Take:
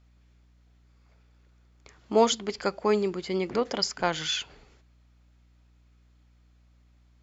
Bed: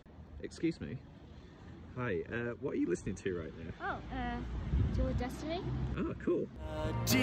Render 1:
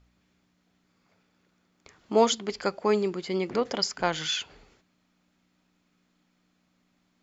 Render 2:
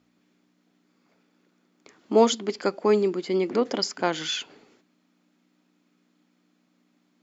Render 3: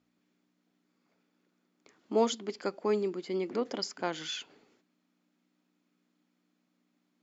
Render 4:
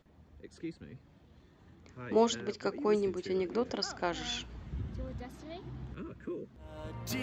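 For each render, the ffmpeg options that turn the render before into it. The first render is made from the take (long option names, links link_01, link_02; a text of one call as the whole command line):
ffmpeg -i in.wav -af "bandreject=frequency=60:width_type=h:width=4,bandreject=frequency=120:width_type=h:width=4" out.wav
ffmpeg -i in.wav -af "highpass=200,equalizer=frequency=280:width=1.2:gain=8.5" out.wav
ffmpeg -i in.wav -af "volume=-8.5dB" out.wav
ffmpeg -i in.wav -i bed.wav -filter_complex "[1:a]volume=-7dB[link_01];[0:a][link_01]amix=inputs=2:normalize=0" out.wav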